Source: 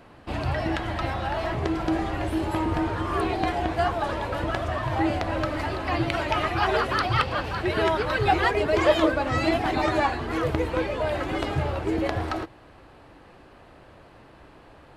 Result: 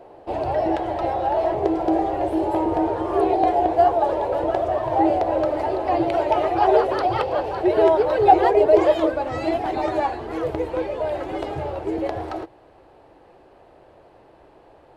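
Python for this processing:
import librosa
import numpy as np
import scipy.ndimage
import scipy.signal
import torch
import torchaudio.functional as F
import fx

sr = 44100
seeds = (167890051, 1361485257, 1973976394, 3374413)

y = fx.band_shelf(x, sr, hz=550.0, db=fx.steps((0.0, 16.0), (8.84, 9.0)), octaves=1.7)
y = F.gain(torch.from_numpy(y), -6.5).numpy()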